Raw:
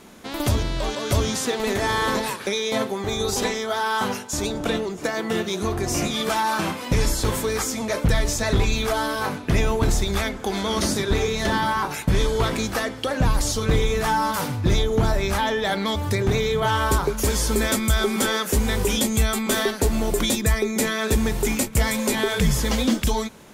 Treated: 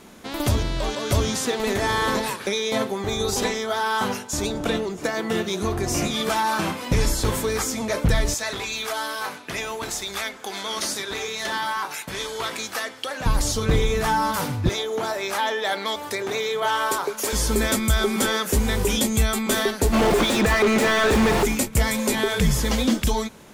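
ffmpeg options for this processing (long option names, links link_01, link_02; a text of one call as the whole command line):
ffmpeg -i in.wav -filter_complex "[0:a]asettb=1/sr,asplit=3[link_01][link_02][link_03];[link_01]atrim=end=8.344[link_04];[link_02]atrim=start=8.34:end=13.26,asetpts=PTS-STARTPTS,afade=type=in:duration=0.004:curve=qsin,afade=type=out:start_time=4.916:duration=0.004:curve=qsin,highpass=frequency=1100:poles=1[link_05];[link_03]atrim=start=13.256[link_06];[link_04][link_05]acrossfade=duration=0.004:curve1=hsin:curve2=qsin[link_07];[link_07][link_06]acrossfade=duration=0.004:curve1=qsin:curve2=hsin,asettb=1/sr,asplit=3[link_08][link_09][link_10];[link_08]atrim=end=14.694[link_11];[link_09]atrim=start=14.69:end=17.33,asetpts=PTS-STARTPTS,afade=type=in:duration=0.004:curve=qsin,afade=type=out:start_time=2.636:duration=0.004:curve=qsin,highpass=430[link_12];[link_10]atrim=start=17.326[link_13];[link_11][link_12]acrossfade=duration=0.004:curve1=hsin:curve2=qsin[link_14];[link_14][link_13]acrossfade=duration=0.004:curve1=qsin:curve2=hsin,asplit=3[link_15][link_16][link_17];[link_15]afade=type=out:start_time=19.92:duration=0.02[link_18];[link_16]asplit=2[link_19][link_20];[link_20]highpass=frequency=720:poles=1,volume=34dB,asoftclip=type=tanh:threshold=-10dB[link_21];[link_19][link_21]amix=inputs=2:normalize=0,lowpass=frequency=1500:poles=1,volume=-6dB,afade=type=in:start_time=19.92:duration=0.02,afade=type=out:start_time=21.44:duration=0.02[link_22];[link_17]afade=type=in:start_time=21.44:duration=0.02[link_23];[link_18][link_22][link_23]amix=inputs=3:normalize=0" out.wav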